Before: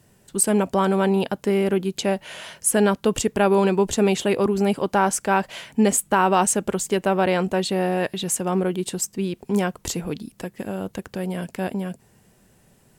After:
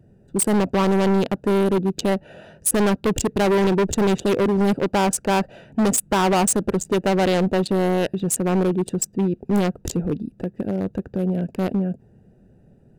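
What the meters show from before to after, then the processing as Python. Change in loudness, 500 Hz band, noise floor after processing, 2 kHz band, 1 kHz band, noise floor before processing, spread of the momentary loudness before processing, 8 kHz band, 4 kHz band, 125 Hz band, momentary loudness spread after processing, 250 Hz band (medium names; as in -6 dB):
+1.0 dB, +0.5 dB, -54 dBFS, -1.0 dB, -1.0 dB, -58 dBFS, 12 LU, -0.5 dB, 0.0 dB, +3.5 dB, 8 LU, +2.5 dB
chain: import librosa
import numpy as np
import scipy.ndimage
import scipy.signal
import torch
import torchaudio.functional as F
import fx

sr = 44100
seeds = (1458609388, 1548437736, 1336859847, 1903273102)

y = fx.wiener(x, sr, points=41)
y = np.clip(10.0 ** (22.0 / 20.0) * y, -1.0, 1.0) / 10.0 ** (22.0 / 20.0)
y = F.gain(torch.from_numpy(y), 6.5).numpy()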